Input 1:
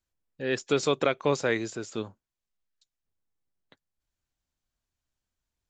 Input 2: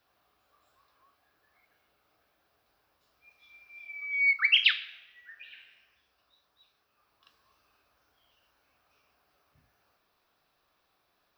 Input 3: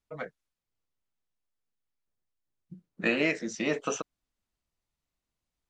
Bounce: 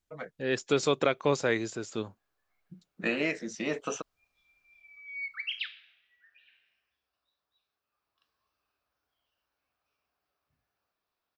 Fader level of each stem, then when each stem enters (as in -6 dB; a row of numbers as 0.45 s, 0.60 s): -1.0 dB, -13.0 dB, -3.0 dB; 0.00 s, 0.95 s, 0.00 s